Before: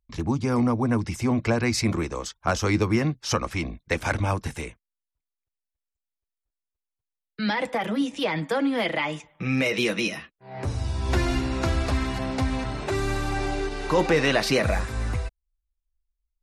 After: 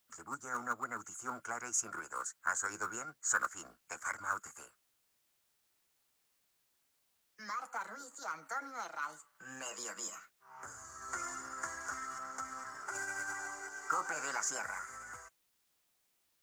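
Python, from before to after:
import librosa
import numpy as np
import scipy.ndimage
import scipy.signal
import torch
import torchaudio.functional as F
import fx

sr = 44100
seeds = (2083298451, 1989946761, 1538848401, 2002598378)

p1 = fx.double_bandpass(x, sr, hz=2500.0, octaves=2.3)
p2 = fx.quant_float(p1, sr, bits=2)
p3 = p1 + F.gain(torch.from_numpy(p2), -8.0).numpy()
p4 = fx.dmg_noise_colour(p3, sr, seeds[0], colour='white', level_db=-75.0)
p5 = fx.formant_shift(p4, sr, semitones=4)
y = F.gain(torch.from_numpy(p5), -2.5).numpy()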